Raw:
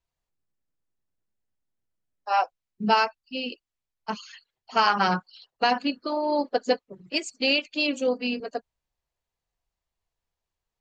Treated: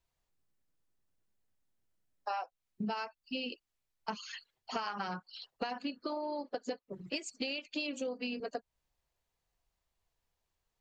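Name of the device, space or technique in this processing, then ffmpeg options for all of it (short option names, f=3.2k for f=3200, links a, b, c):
serial compression, leveller first: -af "acompressor=threshold=-25dB:ratio=2.5,acompressor=threshold=-37dB:ratio=6,volume=2dB"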